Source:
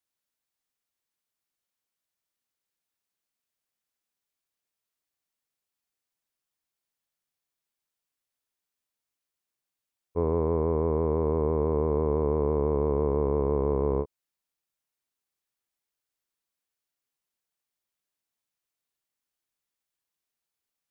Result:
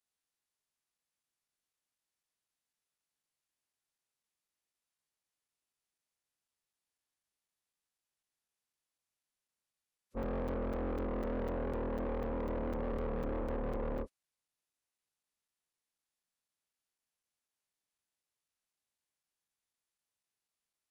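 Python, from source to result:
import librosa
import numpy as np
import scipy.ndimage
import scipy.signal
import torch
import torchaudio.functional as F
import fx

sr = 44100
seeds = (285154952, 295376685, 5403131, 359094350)

y = fx.pitch_keep_formants(x, sr, semitones=-11.0)
y = 10.0 ** (-30.5 / 20.0) * np.tanh(y / 10.0 ** (-30.5 / 20.0))
y = fx.buffer_crackle(y, sr, first_s=0.98, period_s=0.25, block=256, kind='zero')
y = y * 10.0 ** (-3.0 / 20.0)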